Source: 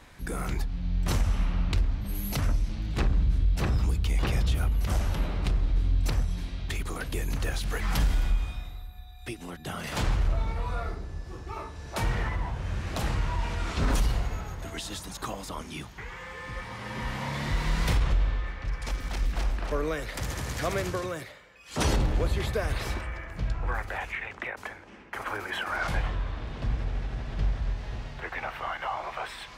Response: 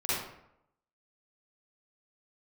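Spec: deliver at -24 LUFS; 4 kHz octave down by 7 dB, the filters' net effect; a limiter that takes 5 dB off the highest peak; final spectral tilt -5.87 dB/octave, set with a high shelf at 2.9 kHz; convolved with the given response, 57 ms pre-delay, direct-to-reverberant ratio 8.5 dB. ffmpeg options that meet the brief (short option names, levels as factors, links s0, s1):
-filter_complex "[0:a]highshelf=f=2900:g=-6.5,equalizer=f=4000:t=o:g=-4,alimiter=limit=0.0794:level=0:latency=1,asplit=2[s0][s1];[1:a]atrim=start_sample=2205,adelay=57[s2];[s1][s2]afir=irnorm=-1:irlink=0,volume=0.141[s3];[s0][s3]amix=inputs=2:normalize=0,volume=2.99"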